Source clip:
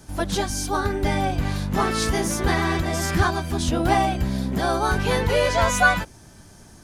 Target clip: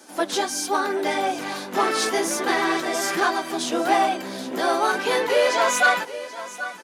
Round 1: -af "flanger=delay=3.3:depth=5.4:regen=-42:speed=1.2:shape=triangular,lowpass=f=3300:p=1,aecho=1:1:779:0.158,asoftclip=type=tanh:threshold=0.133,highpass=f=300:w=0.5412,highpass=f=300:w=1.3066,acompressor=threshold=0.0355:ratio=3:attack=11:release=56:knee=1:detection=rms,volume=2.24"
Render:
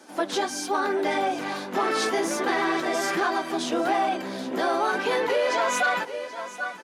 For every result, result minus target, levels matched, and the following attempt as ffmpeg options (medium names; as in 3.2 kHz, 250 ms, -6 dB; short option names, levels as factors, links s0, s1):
compression: peak gain reduction +7 dB; 8 kHz band -3.5 dB
-af "flanger=delay=3.3:depth=5.4:regen=-42:speed=1.2:shape=triangular,lowpass=f=3300:p=1,aecho=1:1:779:0.158,asoftclip=type=tanh:threshold=0.133,highpass=f=300:w=0.5412,highpass=f=300:w=1.3066,volume=2.24"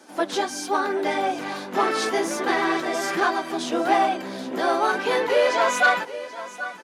8 kHz band -5.5 dB
-af "flanger=delay=3.3:depth=5.4:regen=-42:speed=1.2:shape=triangular,lowpass=f=13000:p=1,aecho=1:1:779:0.158,asoftclip=type=tanh:threshold=0.133,highpass=f=300:w=0.5412,highpass=f=300:w=1.3066,volume=2.24"